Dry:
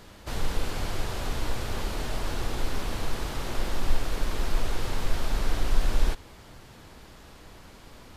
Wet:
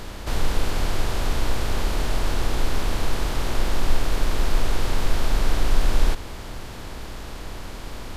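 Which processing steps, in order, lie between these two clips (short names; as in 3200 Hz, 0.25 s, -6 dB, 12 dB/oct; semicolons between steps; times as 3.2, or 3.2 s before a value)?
per-bin compression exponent 0.6; gain +2.5 dB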